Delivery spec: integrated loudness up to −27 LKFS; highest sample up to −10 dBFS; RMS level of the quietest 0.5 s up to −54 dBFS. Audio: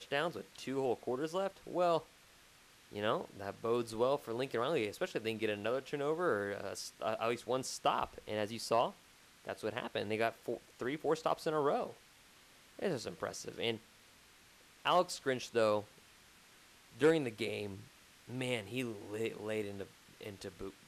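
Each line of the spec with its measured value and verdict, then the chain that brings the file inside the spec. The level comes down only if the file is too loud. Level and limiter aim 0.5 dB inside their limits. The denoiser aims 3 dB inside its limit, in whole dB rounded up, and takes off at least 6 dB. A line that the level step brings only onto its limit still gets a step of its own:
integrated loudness −37.0 LKFS: in spec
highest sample −19.5 dBFS: in spec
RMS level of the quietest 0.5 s −63 dBFS: in spec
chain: no processing needed

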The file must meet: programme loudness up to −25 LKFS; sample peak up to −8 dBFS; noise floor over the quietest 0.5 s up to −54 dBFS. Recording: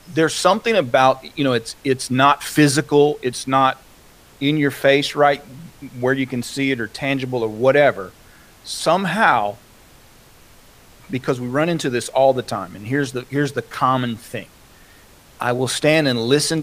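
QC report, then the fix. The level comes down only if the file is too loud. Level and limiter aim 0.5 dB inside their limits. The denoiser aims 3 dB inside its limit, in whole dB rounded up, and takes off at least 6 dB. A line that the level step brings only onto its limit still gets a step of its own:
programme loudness −18.5 LKFS: out of spec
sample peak −1.5 dBFS: out of spec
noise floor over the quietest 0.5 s −48 dBFS: out of spec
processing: level −7 dB

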